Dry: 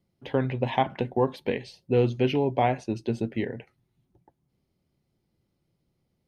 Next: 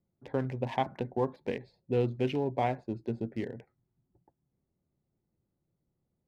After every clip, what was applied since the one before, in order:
adaptive Wiener filter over 15 samples
level −6 dB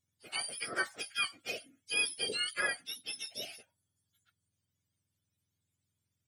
frequency axis turned over on the octave scale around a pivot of 1,100 Hz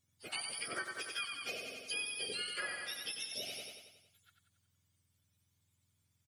on a send: repeating echo 92 ms, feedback 55%, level −6 dB
on the sum: downward compressor 4 to 1, threshold −44 dBFS, peak gain reduction 14.5 dB
level +4.5 dB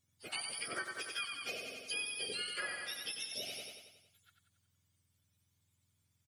no processing that can be heard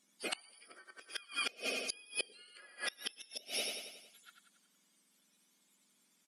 linear-phase brick-wall band-pass 180–13,000 Hz
gate with flip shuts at −32 dBFS, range −28 dB
level +9.5 dB

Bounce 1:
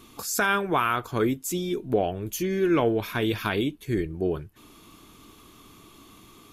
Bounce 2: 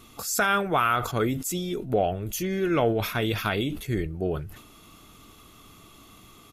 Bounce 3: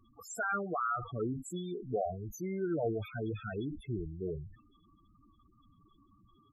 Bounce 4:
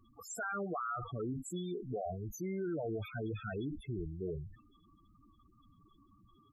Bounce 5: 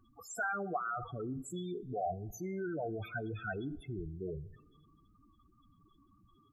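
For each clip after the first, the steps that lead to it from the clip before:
comb filter 1.5 ms, depth 35%; level that may fall only so fast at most 79 dB per second
spectral peaks only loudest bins 8; level −8.5 dB
brickwall limiter −31 dBFS, peak gain reduction 7.5 dB
hollow resonant body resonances 760/1,500 Hz, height 11 dB, ringing for 30 ms; on a send at −21.5 dB: convolution reverb RT60 1.2 s, pre-delay 3 ms; on the sum: level −1.5 dB

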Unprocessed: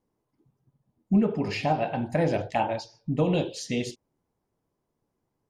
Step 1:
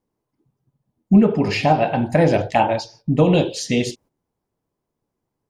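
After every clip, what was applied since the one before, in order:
noise gate −56 dBFS, range −9 dB
level +9 dB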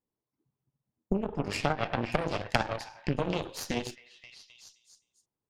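downward compressor 8 to 1, threshold −20 dBFS, peak gain reduction 12.5 dB
echo through a band-pass that steps 261 ms, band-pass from 1,400 Hz, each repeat 0.7 octaves, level −2 dB
harmonic generator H 3 −11 dB, 4 −12 dB, 5 −44 dB, 6 −24 dB, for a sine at −8 dBFS
level +1.5 dB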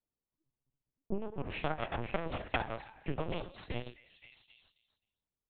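linear-prediction vocoder at 8 kHz pitch kept
level −5.5 dB

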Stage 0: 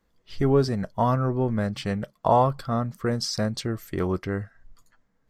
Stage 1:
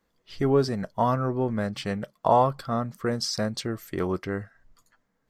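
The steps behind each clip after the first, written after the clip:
low-shelf EQ 110 Hz −9.5 dB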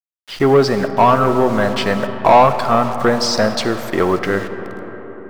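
bit reduction 8 bits
mid-hump overdrive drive 18 dB, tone 2,300 Hz, clips at −7.5 dBFS
on a send at −9 dB: convolution reverb RT60 5.0 s, pre-delay 15 ms
on the sum: level +6.5 dB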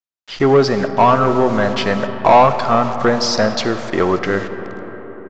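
downsampling to 16,000 Hz

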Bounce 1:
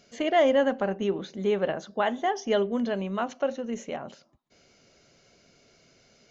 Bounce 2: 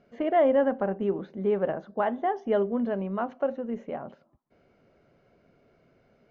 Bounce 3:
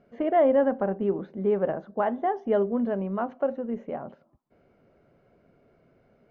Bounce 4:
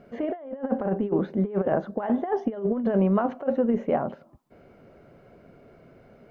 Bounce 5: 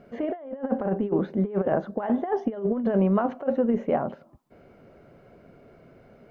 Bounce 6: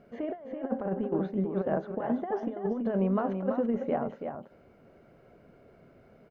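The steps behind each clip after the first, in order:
low-pass filter 1,400 Hz 12 dB per octave
high-shelf EQ 2,800 Hz −10 dB; level +1.5 dB
compressor whose output falls as the input rises −29 dBFS, ratio −0.5; level +5 dB
no processing that can be heard
single-tap delay 332 ms −7 dB; level −5.5 dB

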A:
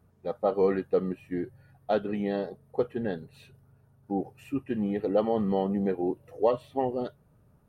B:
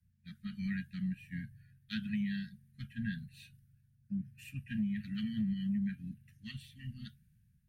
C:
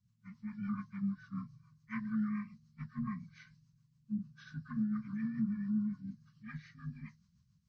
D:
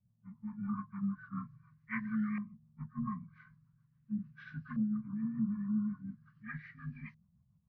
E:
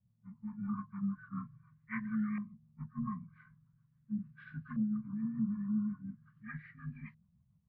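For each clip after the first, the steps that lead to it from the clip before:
Chebyshev band-stop filter 220–1,600 Hz, order 5; downward compressor, threshold −33 dBFS, peak gain reduction 7 dB; multiband upward and downward expander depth 40%; level +1 dB
partials spread apart or drawn together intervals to 78%; healed spectral selection 0:05.11–0:05.91, 240–1,500 Hz both; rotating-speaker cabinet horn 7 Hz; level +2 dB
auto-filter low-pass saw up 0.42 Hz 610–2,700 Hz
high-frequency loss of the air 280 metres

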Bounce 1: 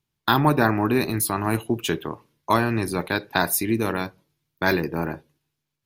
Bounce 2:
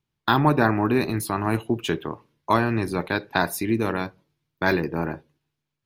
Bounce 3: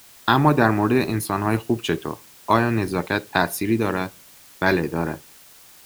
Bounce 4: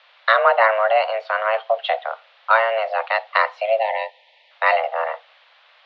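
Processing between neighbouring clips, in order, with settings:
high-shelf EQ 6,400 Hz −11.5 dB
in parallel at −10 dB: dead-zone distortion −39.5 dBFS; on the sum: bit-depth reduction 8 bits, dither triangular
gain on a spectral selection 0:03.79–0:04.51, 670–1,400 Hz −26 dB; single-sideband voice off tune +330 Hz 200–3,400 Hz; level +2.5 dB

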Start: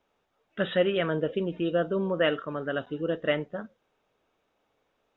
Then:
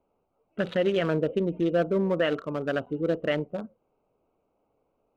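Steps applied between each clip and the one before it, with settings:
adaptive Wiener filter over 25 samples
brickwall limiter −18.5 dBFS, peak gain reduction 6.5 dB
level +3.5 dB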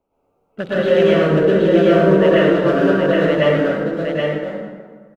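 in parallel at −7 dB: dead-zone distortion −44 dBFS
on the sum: single-tap delay 772 ms −4 dB
dense smooth reverb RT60 1.6 s, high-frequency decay 0.6×, pre-delay 95 ms, DRR −9 dB
level −1 dB

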